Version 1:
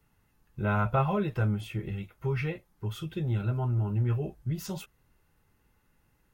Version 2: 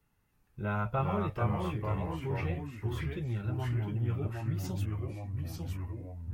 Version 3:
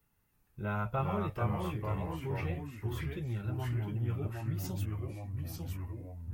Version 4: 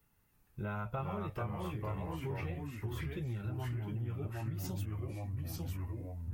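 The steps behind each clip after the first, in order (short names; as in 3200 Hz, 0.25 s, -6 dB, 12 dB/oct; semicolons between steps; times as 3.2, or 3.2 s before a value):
echoes that change speed 0.322 s, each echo -2 st, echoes 3; gain -5.5 dB
high shelf 11000 Hz +11 dB; gain -2 dB
compressor, threshold -37 dBFS, peak gain reduction 10 dB; gain +2 dB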